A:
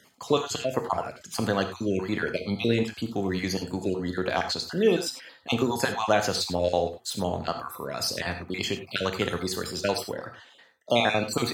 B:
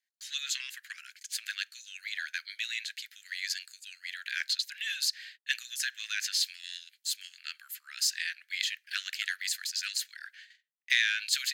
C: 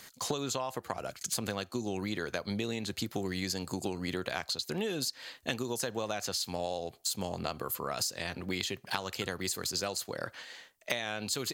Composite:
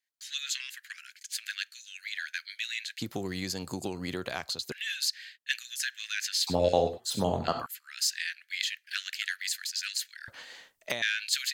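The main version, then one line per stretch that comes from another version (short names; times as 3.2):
B
3.01–4.72 from C
6.47–7.66 from A
10.28–11.02 from C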